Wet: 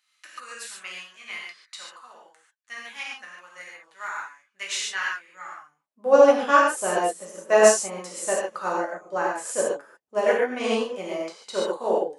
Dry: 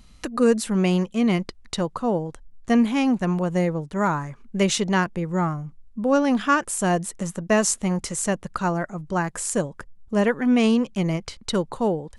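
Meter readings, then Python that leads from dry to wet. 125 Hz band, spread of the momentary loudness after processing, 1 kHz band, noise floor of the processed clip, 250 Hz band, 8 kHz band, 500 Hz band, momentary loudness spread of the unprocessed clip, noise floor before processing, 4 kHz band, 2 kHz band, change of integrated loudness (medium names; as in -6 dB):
under -20 dB, 24 LU, +0.5 dB, -73 dBFS, -13.5 dB, -1.5 dB, +2.5 dB, 9 LU, -50 dBFS, -2.0 dB, +1.0 dB, 0.0 dB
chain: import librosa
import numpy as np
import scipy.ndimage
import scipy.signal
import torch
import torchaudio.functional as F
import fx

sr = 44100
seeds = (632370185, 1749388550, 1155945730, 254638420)

y = fx.filter_sweep_highpass(x, sr, from_hz=1700.0, to_hz=500.0, start_s=5.48, end_s=5.98, q=1.5)
y = fx.rev_gated(y, sr, seeds[0], gate_ms=170, shape='flat', drr_db=-5.5)
y = fx.upward_expand(y, sr, threshold_db=-33.0, expansion=1.5)
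y = y * 10.0 ** (-2.5 / 20.0)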